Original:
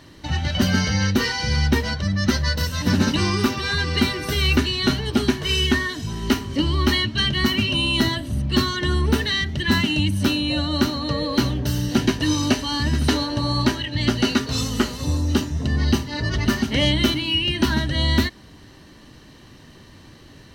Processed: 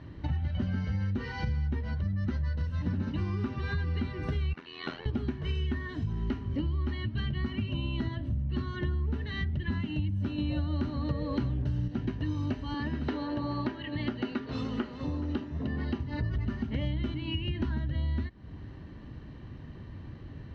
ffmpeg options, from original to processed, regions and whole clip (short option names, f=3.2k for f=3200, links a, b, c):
-filter_complex "[0:a]asettb=1/sr,asplit=3[a][b][c];[a]atrim=end=4.534[d];[b]atrim=start=4.53:end=5.06,asetpts=PTS-STARTPTS,afade=t=in:d=0.004:c=qsin,afade=t=out:st=0.526:d=0.004:c=qsin,highpass=560,lowpass=6.4k,tremolo=f=84:d=0.974[e];[c]atrim=start=5.056[f];[d][e]acrossfade=d=0.004:c1=hsin:c2=qsin[g];[g][f]acrossfade=d=0.004:c1=qsin:c2=hsin,asettb=1/sr,asplit=3[h][i][j];[h]atrim=end=10.384[k];[i]atrim=start=10.38:end=11.88,asetpts=PTS-STARTPTS,afade=t=in:d=0.004:c=qsin,afade=t=out:st=1.496:d=0.004:c=qsin,highpass=f=42:w=0.5412,highpass=f=42:w=1.3066,acontrast=72,acrusher=bits=5:mode=log:mix=0:aa=0.000001[l];[j]atrim=start=11.876[m];[k][l]acrossfade=d=0.004:c1=hsin:c2=qsin[n];[n][m]acrossfade=d=0.004:c1=qsin:c2=hsin,asettb=1/sr,asplit=3[o][p][q];[o]atrim=end=12.744[r];[p]atrim=start=12.74:end=16,asetpts=PTS-STARTPTS,afade=t=in:d=0.004:c=qsin,afade=t=out:st=3.256:d=0.004:c=qsin,acrossover=split=210 5800:gain=0.141 1 0.2[s][t][u];[s][t][u]amix=inputs=3:normalize=0,aecho=1:1:424:0.106,atrim=end_sample=143766[v];[q]atrim=start=15.996[w];[r][v]acrossfade=d=0.004:c1=hsin:c2=qsin[x];[x][w]acrossfade=d=0.004:c1=qsin:c2=hsin,lowpass=2.3k,equalizer=f=72:w=0.36:g=12.5,acompressor=threshold=-23dB:ratio=6,volume=-6dB"